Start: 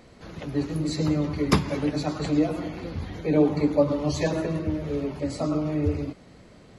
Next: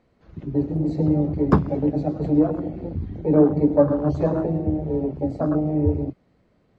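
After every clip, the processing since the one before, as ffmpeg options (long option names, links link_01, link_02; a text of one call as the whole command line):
ffmpeg -i in.wav -af "afwtdn=0.0447,lowpass=frequency=2000:poles=1,volume=4.5dB" out.wav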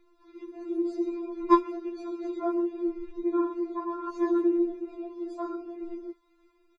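ffmpeg -i in.wav -af "aecho=1:1:2.1:0.98,afftfilt=real='re*4*eq(mod(b,16),0)':imag='im*4*eq(mod(b,16),0)':win_size=2048:overlap=0.75" out.wav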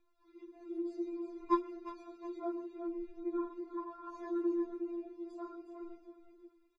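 ffmpeg -i in.wav -filter_complex "[0:a]asplit=2[link_01][link_02];[link_02]aecho=0:1:359|718|1077:0.398|0.0756|0.0144[link_03];[link_01][link_03]amix=inputs=2:normalize=0,flanger=delay=1.2:depth=5.1:regen=-40:speed=0.49:shape=sinusoidal,volume=-7dB" out.wav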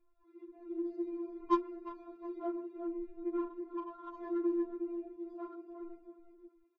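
ffmpeg -i in.wav -af "adynamicsmooth=sensitivity=6.5:basefreq=1900,volume=1dB" -ar 16000 -c:a libvorbis -b:a 48k out.ogg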